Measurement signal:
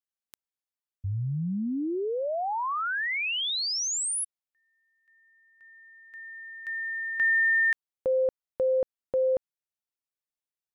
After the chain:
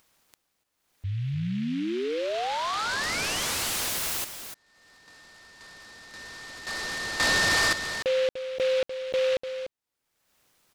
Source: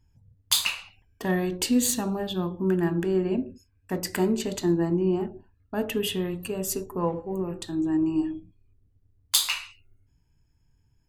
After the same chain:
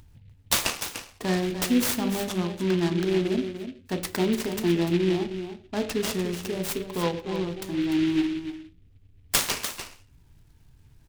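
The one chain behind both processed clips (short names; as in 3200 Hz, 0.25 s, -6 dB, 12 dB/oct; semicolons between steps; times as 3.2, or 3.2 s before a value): upward compressor, threshold -43 dBFS; echo 0.296 s -9.5 dB; noise-modulated delay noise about 2500 Hz, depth 0.076 ms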